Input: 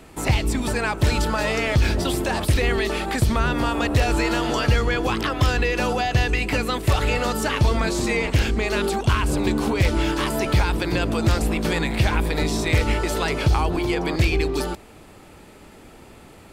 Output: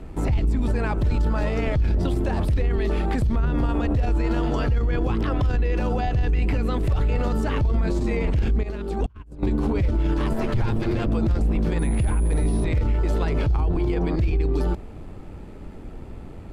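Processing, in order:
0:10.33–0:11.07: lower of the sound and its delayed copy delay 8.6 ms
amplitude modulation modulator 90 Hz, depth 20%
spectral tilt −3.5 dB per octave
0:08.63–0:09.43: compressor whose output falls as the input rises −26 dBFS, ratio −0.5
brickwall limiter −15 dBFS, peak gain reduction 17.5 dB
0:11.79–0:12.64: switching amplifier with a slow clock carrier 9,900 Hz

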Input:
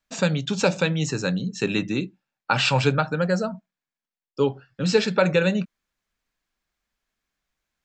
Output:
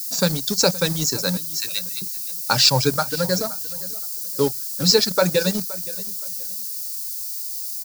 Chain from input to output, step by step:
reverb reduction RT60 1.3 s
0:01.37–0:02.02: Butterworth high-pass 1,600 Hz
in parallel at −4 dB: centre clipping without the shift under −25.5 dBFS
on the sum: background noise violet −36 dBFS
high shelf with overshoot 3,700 Hz +8.5 dB, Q 3
on a send: repeating echo 520 ms, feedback 26%, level −19 dB
on the sum: level −2.5 dB

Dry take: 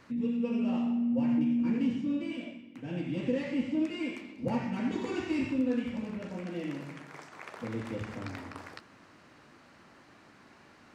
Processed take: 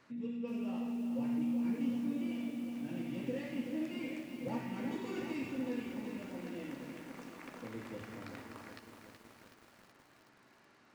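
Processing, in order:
low-shelf EQ 94 Hz −12 dB
tuned comb filter 130 Hz, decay 0.98 s, harmonics odd, mix 70%
feedback echo at a low word length 374 ms, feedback 80%, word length 10 bits, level −7.5 dB
level +2.5 dB

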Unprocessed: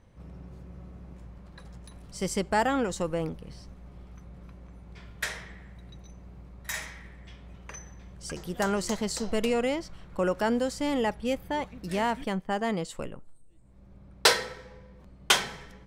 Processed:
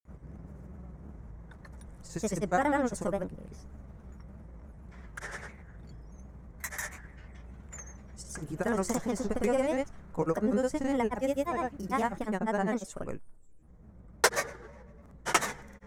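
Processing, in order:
granular cloud, grains 20 per second, pitch spread up and down by 3 semitones
flat-topped bell 3,500 Hz −10.5 dB 1.2 octaves

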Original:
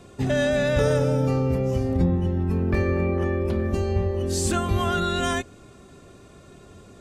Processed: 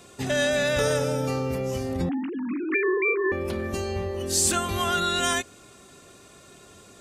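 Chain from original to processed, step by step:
0:02.09–0:03.32: three sine waves on the formant tracks
spectral tilt +2.5 dB per octave

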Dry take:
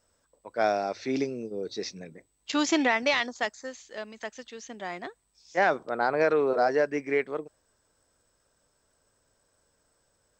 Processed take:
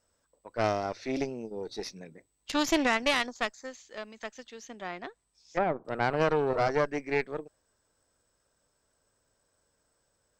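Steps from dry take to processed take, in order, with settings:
0:04.66–0:05.85: treble cut that deepens with the level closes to 920 Hz, closed at −24 dBFS
harmonic generator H 4 −12 dB, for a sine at −11 dBFS
level −3.5 dB

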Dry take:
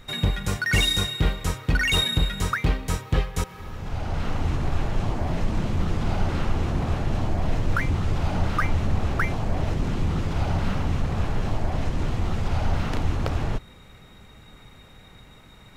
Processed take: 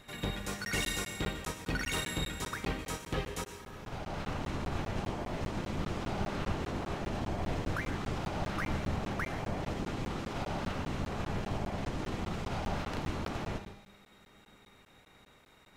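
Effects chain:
ceiling on every frequency bin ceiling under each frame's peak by 14 dB
tuned comb filter 200 Hz, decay 1.7 s, mix 70%
backwards echo 92 ms −18 dB
dense smooth reverb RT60 0.53 s, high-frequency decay 0.95×, pre-delay 95 ms, DRR 9 dB
regular buffer underruns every 0.20 s, samples 512, zero
level −3 dB

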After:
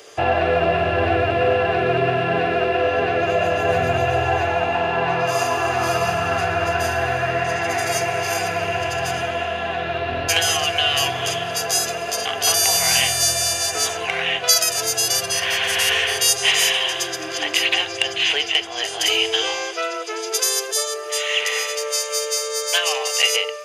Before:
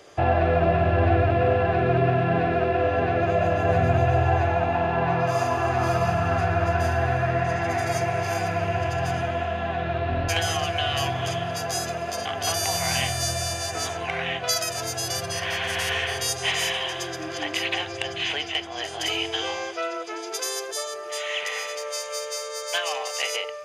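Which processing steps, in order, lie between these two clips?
spectral tilt +2.5 dB per octave
hollow resonant body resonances 440/2,800 Hz, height 9 dB, ringing for 45 ms
level +3.5 dB

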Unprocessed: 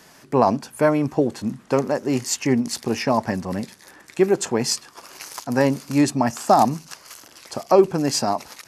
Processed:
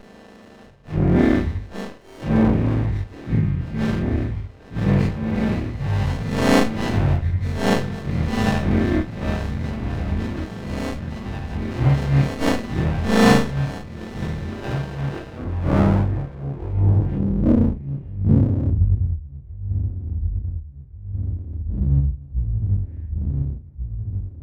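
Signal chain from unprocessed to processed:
every partial snapped to a pitch grid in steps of 2 semitones
echo whose low-pass opens from repeat to repeat 510 ms, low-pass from 750 Hz, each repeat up 2 octaves, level −6 dB
low-pass filter sweep 5,600 Hz → 220 Hz, 0:05.07–0:06.86
change of speed 0.355×
windowed peak hold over 33 samples

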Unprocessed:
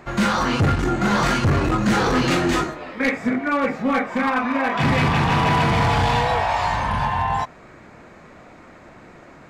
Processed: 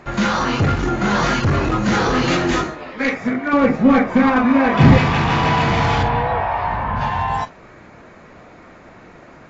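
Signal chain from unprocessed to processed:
0:03.53–0:04.98: low-shelf EQ 470 Hz +11.5 dB
0:06.03–0:07.01: low-pass filter 1,800 Hz 12 dB per octave
level +1 dB
AAC 24 kbit/s 16,000 Hz

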